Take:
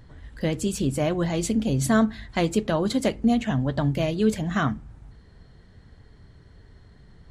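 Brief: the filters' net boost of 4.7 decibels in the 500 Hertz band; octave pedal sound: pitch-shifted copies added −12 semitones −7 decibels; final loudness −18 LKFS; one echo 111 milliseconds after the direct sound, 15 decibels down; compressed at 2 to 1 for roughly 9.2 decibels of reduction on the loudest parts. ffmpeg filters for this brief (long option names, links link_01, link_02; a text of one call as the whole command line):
ffmpeg -i in.wav -filter_complex "[0:a]equalizer=frequency=500:width_type=o:gain=6,acompressor=threshold=-31dB:ratio=2,aecho=1:1:111:0.178,asplit=2[link_01][link_02];[link_02]asetrate=22050,aresample=44100,atempo=2,volume=-7dB[link_03];[link_01][link_03]amix=inputs=2:normalize=0,volume=11dB" out.wav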